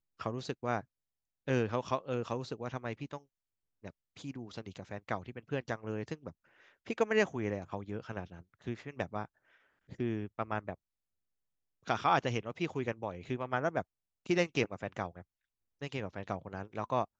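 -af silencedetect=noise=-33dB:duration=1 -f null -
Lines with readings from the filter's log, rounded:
silence_start: 10.73
silence_end: 11.90 | silence_duration: 1.17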